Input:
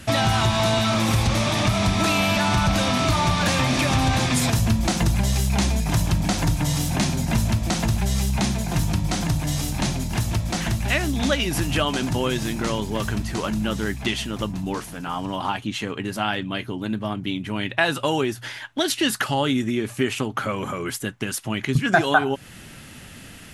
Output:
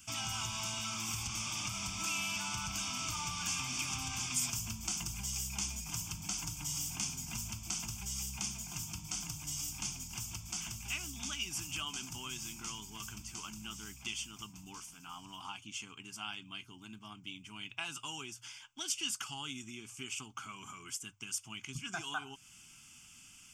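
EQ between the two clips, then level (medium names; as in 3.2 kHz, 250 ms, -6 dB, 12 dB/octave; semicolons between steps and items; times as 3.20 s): pre-emphasis filter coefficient 0.9; hum notches 50/100 Hz; static phaser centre 2.7 kHz, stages 8; -3.0 dB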